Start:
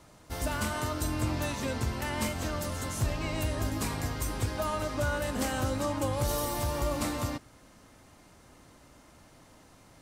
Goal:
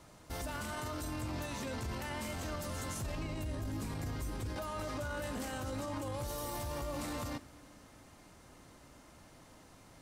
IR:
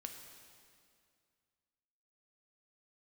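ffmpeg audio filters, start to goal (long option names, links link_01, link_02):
-filter_complex "[0:a]asettb=1/sr,asplit=3[link_01][link_02][link_03];[link_01]atrim=end=3.154[link_04];[link_02]atrim=start=3.15:end=4.56,asetpts=PTS-STARTPTS,afade=type=in:duration=0.004:curve=qsin,afade=type=out:start_time=1.406:duration=0.004:curve=qsin,acrossover=split=400[link_05][link_06];[link_06]acompressor=threshold=-47dB:ratio=2[link_07];[link_05][link_07]amix=inputs=2:normalize=0[link_08];[link_03]atrim=start=4.556[link_09];[link_04][link_08]acrossfade=duration=0.004:curve1=hsin:curve2=qsin[link_10];[link_10][link_09]acrossfade=duration=0.004:curve1=qsin:curve2=hsin,alimiter=level_in=6dB:limit=-24dB:level=0:latency=1:release=12,volume=-6dB,asplit=2[link_11][link_12];[1:a]atrim=start_sample=2205,asetrate=35280,aresample=44100[link_13];[link_12][link_13]afir=irnorm=-1:irlink=0,volume=-10.5dB[link_14];[link_11][link_14]amix=inputs=2:normalize=0,volume=-3dB"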